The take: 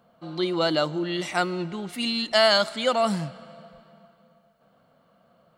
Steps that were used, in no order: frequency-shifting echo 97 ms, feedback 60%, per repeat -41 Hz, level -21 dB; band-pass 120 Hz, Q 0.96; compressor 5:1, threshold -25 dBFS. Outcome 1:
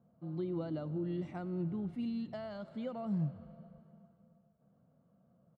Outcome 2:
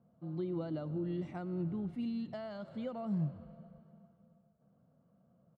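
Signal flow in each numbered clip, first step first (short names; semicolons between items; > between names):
compressor > frequency-shifting echo > band-pass; frequency-shifting echo > compressor > band-pass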